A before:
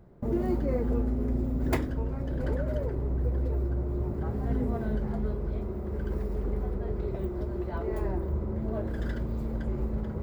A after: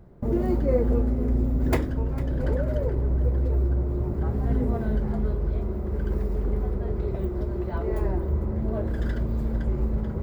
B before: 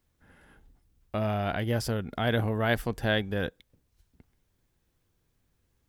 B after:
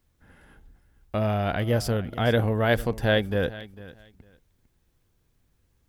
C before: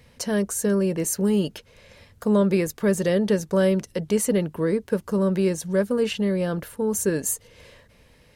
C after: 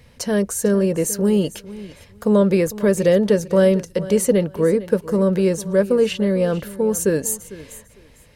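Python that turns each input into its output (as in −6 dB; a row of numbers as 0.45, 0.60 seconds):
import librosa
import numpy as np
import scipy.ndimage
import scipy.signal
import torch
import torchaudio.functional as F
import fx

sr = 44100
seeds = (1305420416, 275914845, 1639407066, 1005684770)

p1 = fx.low_shelf(x, sr, hz=110.0, db=4.0)
p2 = p1 + fx.echo_feedback(p1, sr, ms=451, feedback_pct=19, wet_db=-16.5, dry=0)
p3 = fx.dynamic_eq(p2, sr, hz=510.0, q=3.4, threshold_db=-37.0, ratio=4.0, max_db=6)
y = p3 * librosa.db_to_amplitude(2.5)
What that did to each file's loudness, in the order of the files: +4.5, +4.0, +4.5 LU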